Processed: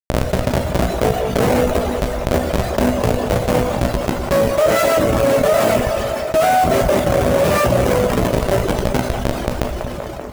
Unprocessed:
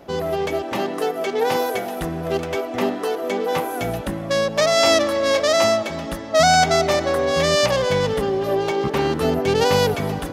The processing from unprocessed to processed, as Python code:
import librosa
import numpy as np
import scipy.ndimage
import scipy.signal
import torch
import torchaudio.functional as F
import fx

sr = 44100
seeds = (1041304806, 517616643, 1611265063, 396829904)

p1 = fx.fade_out_tail(x, sr, length_s=1.98)
p2 = fx.schmitt(p1, sr, flips_db=-16.0)
p3 = fx.rev_schroeder(p2, sr, rt60_s=1.4, comb_ms=25, drr_db=4.0)
p4 = fx.dereverb_blind(p3, sr, rt60_s=0.77)
p5 = p4 + fx.echo_wet_bandpass(p4, sr, ms=193, feedback_pct=44, hz=870.0, wet_db=-16.5, dry=0)
p6 = fx.dynamic_eq(p5, sr, hz=4200.0, q=1.3, threshold_db=-41.0, ratio=4.0, max_db=-4)
p7 = fx.highpass(p6, sr, hz=87.0, slope=6)
p8 = fx.peak_eq(p7, sr, hz=600.0, db=10.5, octaves=0.49)
p9 = fx.doubler(p8, sr, ms=16.0, db=-9.0)
p10 = fx.env_flatten(p9, sr, amount_pct=70)
y = F.gain(torch.from_numpy(p10), -1.0).numpy()